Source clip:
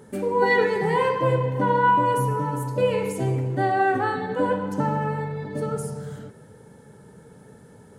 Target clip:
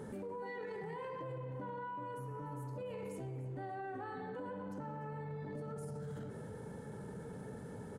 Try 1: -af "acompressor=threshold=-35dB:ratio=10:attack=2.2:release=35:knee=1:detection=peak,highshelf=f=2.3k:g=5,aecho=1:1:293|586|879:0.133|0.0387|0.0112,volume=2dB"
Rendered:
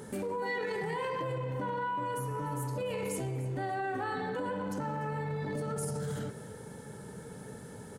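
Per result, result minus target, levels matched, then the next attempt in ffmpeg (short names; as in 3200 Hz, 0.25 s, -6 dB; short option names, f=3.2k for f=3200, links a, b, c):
compressor: peak gain reduction -8 dB; 4000 Hz band +6.0 dB
-af "acompressor=threshold=-44dB:ratio=10:attack=2.2:release=35:knee=1:detection=peak,highshelf=f=2.3k:g=5,aecho=1:1:293|586|879:0.133|0.0387|0.0112,volume=2dB"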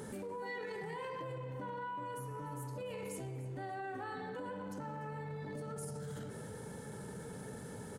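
4000 Hz band +7.0 dB
-af "acompressor=threshold=-44dB:ratio=10:attack=2.2:release=35:knee=1:detection=peak,highshelf=f=2.3k:g=-6.5,aecho=1:1:293|586|879:0.133|0.0387|0.0112,volume=2dB"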